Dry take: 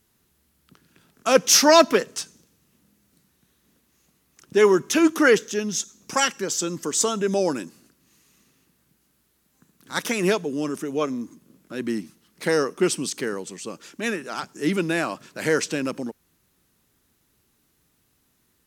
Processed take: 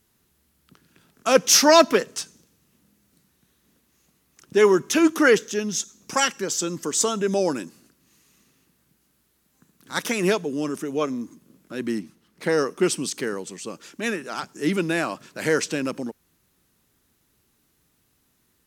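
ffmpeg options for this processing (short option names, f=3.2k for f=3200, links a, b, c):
-filter_complex "[0:a]asettb=1/sr,asplit=3[a][b][c];[a]atrim=end=11.994[d];[b]atrim=start=11.99:end=12.58,asetpts=PTS-STARTPTS,afade=t=in:d=0.004:c=qsin,afade=t=out:st=0.586:d=0.004:c=qsin,highshelf=f=3.4k:g=-7[e];[c]atrim=start=12.576[f];[d][e]acrossfade=d=0.004:c1=hsin:c2=qsin[g];[g][f]acrossfade=d=0.004:c1=qsin:c2=hsin"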